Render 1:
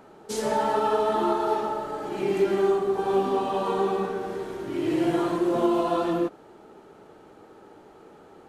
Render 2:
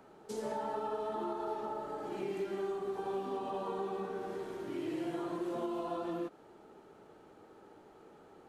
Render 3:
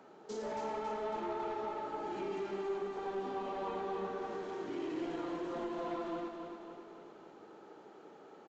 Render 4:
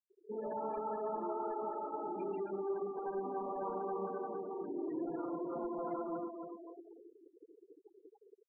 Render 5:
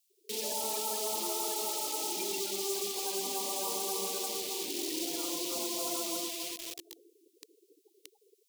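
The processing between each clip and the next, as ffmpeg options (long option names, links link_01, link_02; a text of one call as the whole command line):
ffmpeg -i in.wav -filter_complex "[0:a]acrossover=split=130|1200[link_01][link_02][link_03];[link_01]acompressor=threshold=-57dB:ratio=4[link_04];[link_02]acompressor=threshold=-28dB:ratio=4[link_05];[link_03]acompressor=threshold=-45dB:ratio=4[link_06];[link_04][link_05][link_06]amix=inputs=3:normalize=0,volume=-7.5dB" out.wav
ffmpeg -i in.wav -af "highpass=180,aresample=16000,asoftclip=type=tanh:threshold=-34.5dB,aresample=44100,aecho=1:1:276|552|828|1104|1380|1656|1932:0.501|0.271|0.146|0.0789|0.0426|0.023|0.0124,volume=1dB" out.wav
ffmpeg -i in.wav -af "afftfilt=real='re*gte(hypot(re,im),0.0126)':imag='im*gte(hypot(re,im),0.0126)':win_size=1024:overlap=0.75" out.wav
ffmpeg -i in.wav -filter_complex "[0:a]highpass=210,asplit=2[link_01][link_02];[link_02]acrusher=bits=7:mix=0:aa=0.000001,volume=-4dB[link_03];[link_01][link_03]amix=inputs=2:normalize=0,aexciter=amount=13.3:drive=5.5:freq=2300,volume=-4dB" out.wav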